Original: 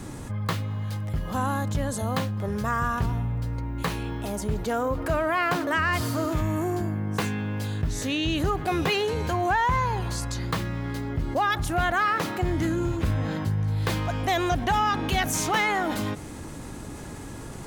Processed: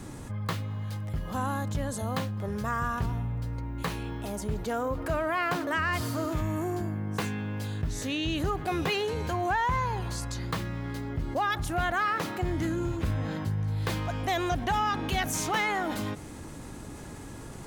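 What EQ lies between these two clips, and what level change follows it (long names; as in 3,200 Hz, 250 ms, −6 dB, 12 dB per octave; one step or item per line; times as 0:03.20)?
no EQ move
−4.0 dB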